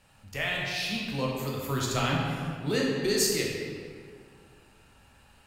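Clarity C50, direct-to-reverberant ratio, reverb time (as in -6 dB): -0.5 dB, -3.5 dB, 2.2 s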